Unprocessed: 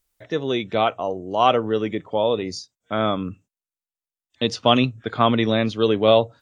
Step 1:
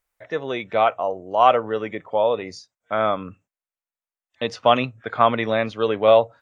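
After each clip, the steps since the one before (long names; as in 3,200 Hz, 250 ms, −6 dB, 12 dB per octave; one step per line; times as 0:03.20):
flat-topped bell 1,100 Hz +9.5 dB 2.6 octaves
level −7 dB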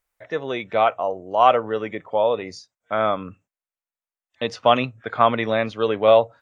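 no processing that can be heard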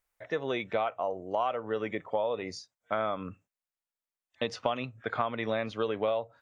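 downward compressor 10 to 1, threshold −23 dBFS, peak gain reduction 14.5 dB
level −3 dB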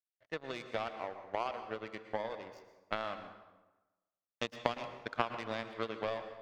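power curve on the samples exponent 2
dense smooth reverb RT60 1.1 s, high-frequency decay 0.7×, pre-delay 100 ms, DRR 9 dB
level +3 dB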